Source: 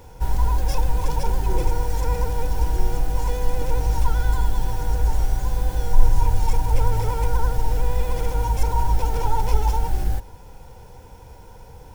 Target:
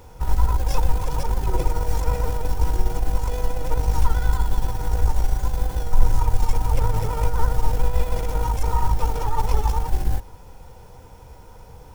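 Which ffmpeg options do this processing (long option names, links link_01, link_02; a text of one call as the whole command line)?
ffmpeg -i in.wav -filter_complex "[0:a]aeval=exprs='0.891*(cos(1*acos(clip(val(0)/0.891,-1,1)))-cos(1*PI/2))+0.112*(cos(2*acos(clip(val(0)/0.891,-1,1)))-cos(2*PI/2))+0.0562*(cos(4*acos(clip(val(0)/0.891,-1,1)))-cos(4*PI/2))+0.0398*(cos(8*acos(clip(val(0)/0.891,-1,1)))-cos(8*PI/2))':channel_layout=same,asplit=2[link_01][link_02];[link_02]asetrate=58866,aresample=44100,atempo=0.749154,volume=-13dB[link_03];[link_01][link_03]amix=inputs=2:normalize=0,volume=-1dB" out.wav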